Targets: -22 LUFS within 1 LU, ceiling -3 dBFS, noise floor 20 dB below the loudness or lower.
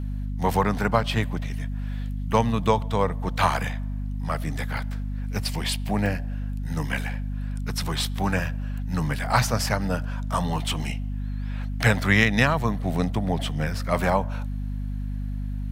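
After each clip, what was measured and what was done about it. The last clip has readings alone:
dropouts 3; longest dropout 1.3 ms; hum 50 Hz; highest harmonic 250 Hz; hum level -27 dBFS; loudness -26.0 LUFS; peak level -3.0 dBFS; loudness target -22.0 LUFS
-> interpolate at 4.77/6.06/11.99 s, 1.3 ms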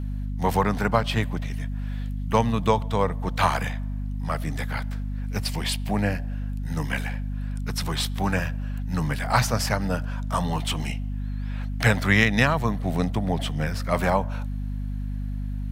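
dropouts 0; hum 50 Hz; highest harmonic 250 Hz; hum level -27 dBFS
-> hum notches 50/100/150/200/250 Hz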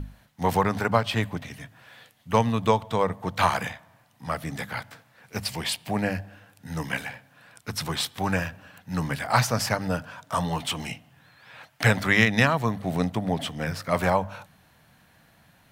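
hum not found; loudness -26.5 LUFS; peak level -4.0 dBFS; loudness target -22.0 LUFS
-> trim +4.5 dB; peak limiter -3 dBFS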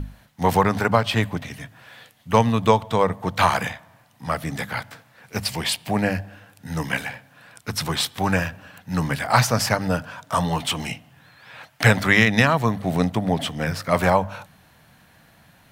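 loudness -22.0 LUFS; peak level -3.0 dBFS; noise floor -55 dBFS

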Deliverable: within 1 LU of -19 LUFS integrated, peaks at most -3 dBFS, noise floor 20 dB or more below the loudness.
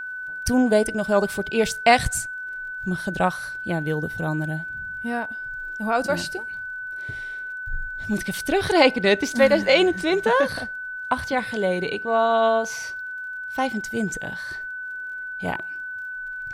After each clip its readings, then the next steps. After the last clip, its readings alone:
tick rate 36 per s; steady tone 1.5 kHz; tone level -30 dBFS; loudness -23.5 LUFS; peak level -2.0 dBFS; loudness target -19.0 LUFS
-> de-click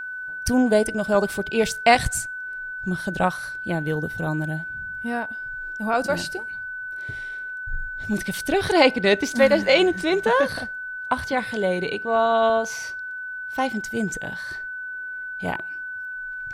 tick rate 0.18 per s; steady tone 1.5 kHz; tone level -30 dBFS
-> band-stop 1.5 kHz, Q 30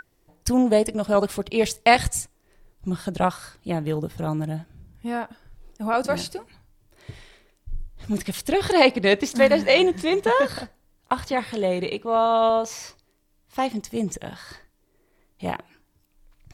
steady tone not found; loudness -23.0 LUFS; peak level -2.5 dBFS; loudness target -19.0 LUFS
-> trim +4 dB; peak limiter -3 dBFS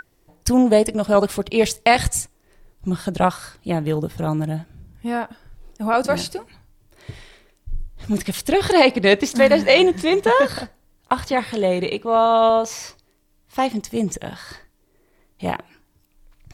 loudness -19.5 LUFS; peak level -3.0 dBFS; noise floor -62 dBFS

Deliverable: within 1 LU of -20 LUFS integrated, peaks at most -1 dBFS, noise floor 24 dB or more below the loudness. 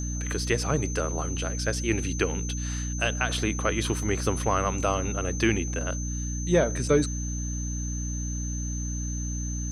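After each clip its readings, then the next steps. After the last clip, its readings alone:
hum 60 Hz; highest harmonic 300 Hz; hum level -29 dBFS; steady tone 6.2 kHz; tone level -36 dBFS; loudness -28.0 LUFS; peak level -9.5 dBFS; loudness target -20.0 LUFS
-> hum notches 60/120/180/240/300 Hz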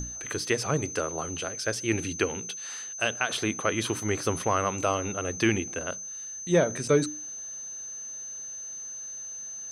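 hum not found; steady tone 6.2 kHz; tone level -36 dBFS
-> band-stop 6.2 kHz, Q 30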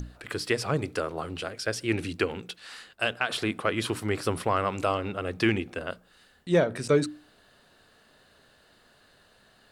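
steady tone not found; loudness -29.0 LUFS; peak level -10.5 dBFS; loudness target -20.0 LUFS
-> trim +9 dB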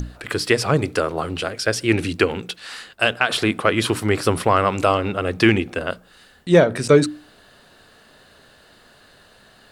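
loudness -20.0 LUFS; peak level -1.5 dBFS; noise floor -52 dBFS

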